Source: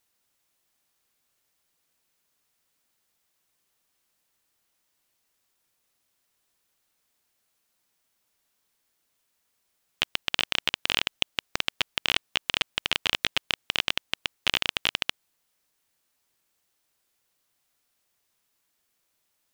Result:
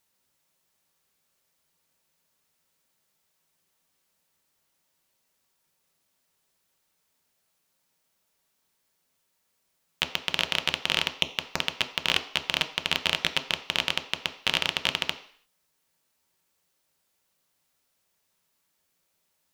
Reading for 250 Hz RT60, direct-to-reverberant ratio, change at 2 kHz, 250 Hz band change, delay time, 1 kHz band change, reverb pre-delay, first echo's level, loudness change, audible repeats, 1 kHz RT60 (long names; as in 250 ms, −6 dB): 0.50 s, 5.5 dB, +0.5 dB, +2.5 dB, no echo audible, +1.5 dB, 3 ms, no echo audible, +0.5 dB, no echo audible, 0.55 s